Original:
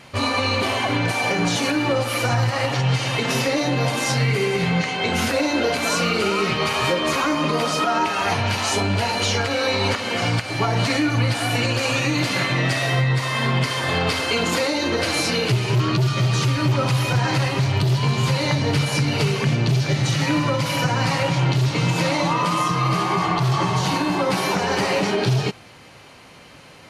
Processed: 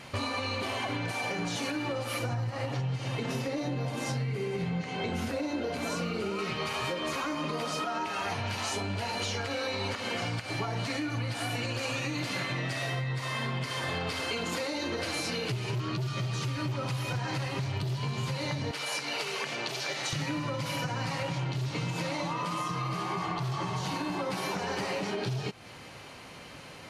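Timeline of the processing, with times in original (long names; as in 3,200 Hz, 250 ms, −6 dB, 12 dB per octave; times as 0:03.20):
0:02.19–0:06.39: tilt shelving filter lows +4.5 dB, about 660 Hz
0:18.71–0:20.13: high-pass filter 560 Hz
whole clip: downward compressor, threshold −29 dBFS; level −1.5 dB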